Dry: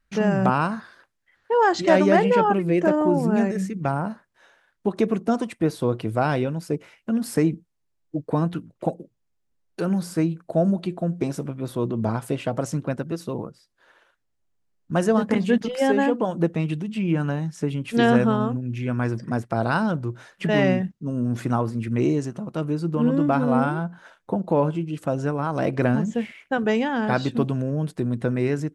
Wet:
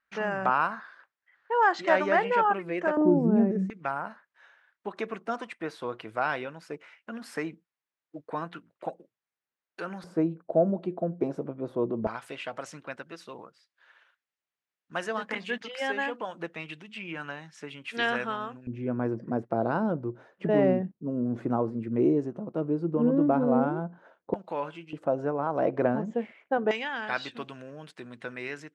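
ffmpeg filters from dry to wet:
-af "asetnsamples=n=441:p=0,asendcmd='2.97 bandpass f 290;3.7 bandpass f 1700;10.04 bandpass f 530;12.07 bandpass f 2200;18.67 bandpass f 430;24.34 bandpass f 2300;24.93 bandpass f 620;26.71 bandpass f 2400',bandpass=f=1.4k:t=q:w=0.97:csg=0"

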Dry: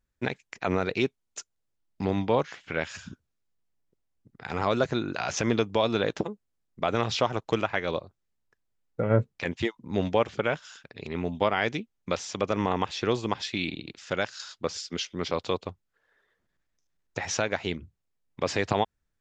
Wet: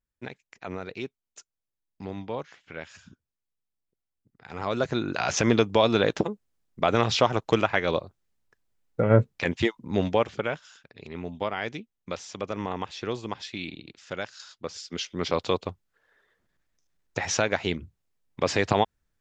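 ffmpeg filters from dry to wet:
-af "volume=12dB,afade=t=in:st=4.47:d=0.82:silence=0.223872,afade=t=out:st=9.68:d=1.02:silence=0.354813,afade=t=in:st=14.73:d=0.6:silence=0.398107"

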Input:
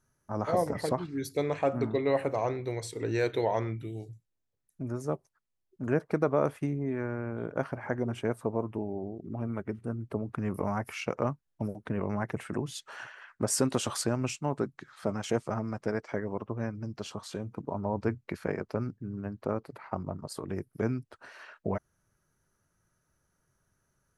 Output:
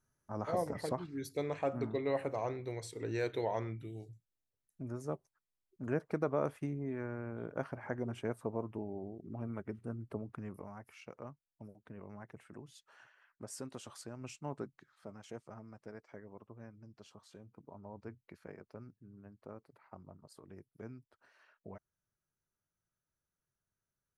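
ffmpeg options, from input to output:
-af "volume=1dB,afade=t=out:st=10.08:d=0.6:silence=0.281838,afade=t=in:st=14.13:d=0.38:silence=0.398107,afade=t=out:st=14.51:d=0.45:silence=0.398107"

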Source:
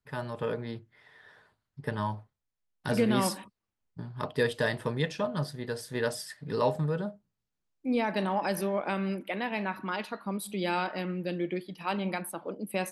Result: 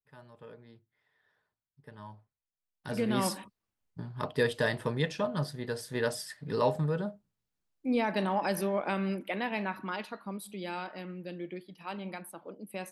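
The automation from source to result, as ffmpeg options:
-af "volume=-0.5dB,afade=t=in:st=1.9:d=0.97:silence=0.334965,afade=t=in:st=2.87:d=0.51:silence=0.421697,afade=t=out:st=9.45:d=1.18:silence=0.421697"

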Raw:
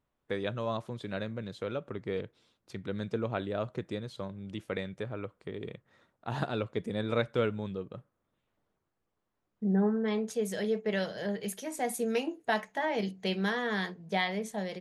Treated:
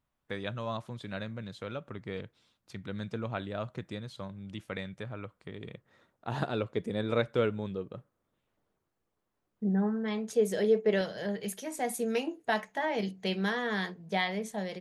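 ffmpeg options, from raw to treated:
-af "asetnsamples=n=441:p=0,asendcmd='5.74 equalizer g 1.5;9.69 equalizer g -5.5;10.33 equalizer g 6.5;11.01 equalizer g -0.5',equalizer=f=410:t=o:w=1.1:g=-6.5"

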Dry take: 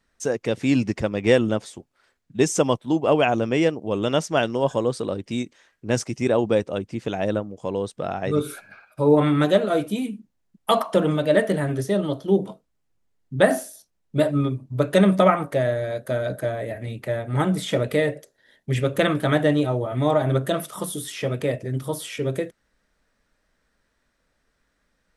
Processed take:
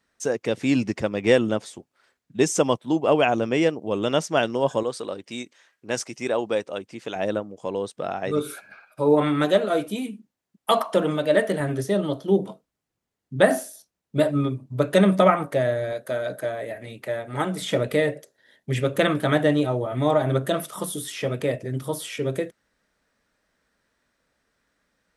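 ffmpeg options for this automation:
-af "asetnsamples=n=441:p=0,asendcmd='4.83 highpass f 610;7.16 highpass f 260;11.6 highpass f 110;15.93 highpass f 390;17.61 highpass f 110',highpass=f=150:p=1"

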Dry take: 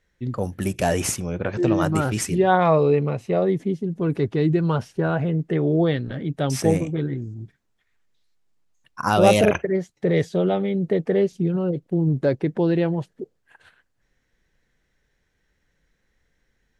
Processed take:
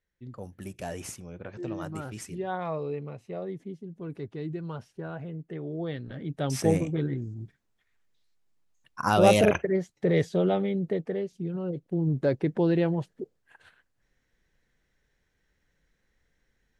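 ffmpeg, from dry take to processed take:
-af "volume=6dB,afade=t=in:st=5.77:d=1.03:silence=0.266073,afade=t=out:st=10.58:d=0.67:silence=0.334965,afade=t=in:st=11.25:d=1.22:silence=0.334965"

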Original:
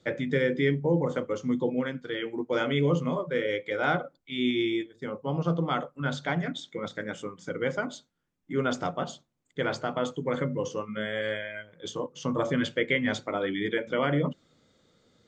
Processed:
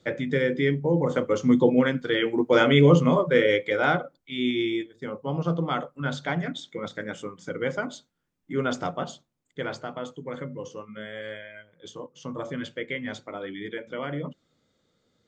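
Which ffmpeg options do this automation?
-af "volume=8.5dB,afade=t=in:st=0.93:d=0.6:silence=0.446684,afade=t=out:st=3.41:d=0.63:silence=0.421697,afade=t=out:st=8.95:d=1.12:silence=0.446684"

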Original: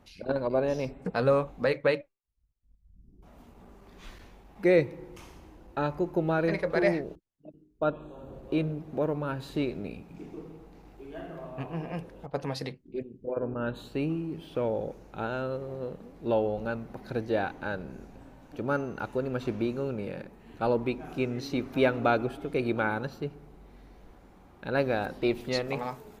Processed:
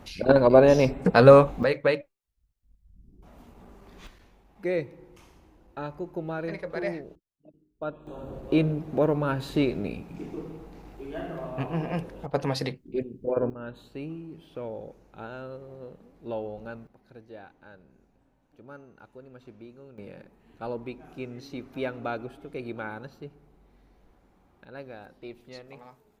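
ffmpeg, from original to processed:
-af "asetnsamples=n=441:p=0,asendcmd='1.63 volume volume 2dB;4.07 volume volume -6dB;8.07 volume volume 5.5dB;13.5 volume volume -7dB;16.87 volume volume -17dB;19.98 volume volume -7.5dB;24.65 volume volume -15dB',volume=11dB"

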